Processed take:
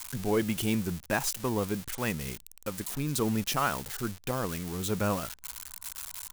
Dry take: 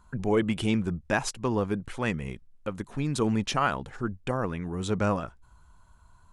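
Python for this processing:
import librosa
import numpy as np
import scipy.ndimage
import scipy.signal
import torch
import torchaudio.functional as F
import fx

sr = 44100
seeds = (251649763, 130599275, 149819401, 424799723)

y = x + 0.5 * 10.0 ** (-23.0 / 20.0) * np.diff(np.sign(x), prepend=np.sign(x[:1]))
y = y * librosa.db_to_amplitude(-3.0)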